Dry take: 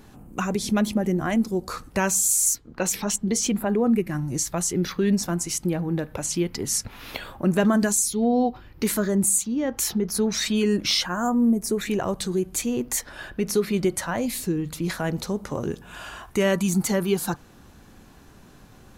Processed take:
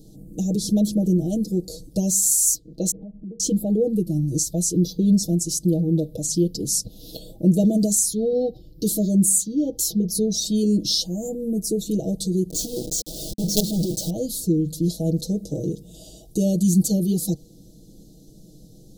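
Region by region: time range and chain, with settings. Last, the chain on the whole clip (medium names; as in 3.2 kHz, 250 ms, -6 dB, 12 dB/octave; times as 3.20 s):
2.91–3.40 s: steep low-pass 2.1 kHz 96 dB/octave + compression 16:1, threshold -35 dBFS
12.50–14.10 s: low-pass 7.1 kHz 24 dB/octave + companded quantiser 2-bit
whole clip: inverse Chebyshev band-stop 1–2.3 kHz, stop band 50 dB; peaking EQ 210 Hz +3.5 dB 0.35 oct; comb 6.3 ms, depth 86%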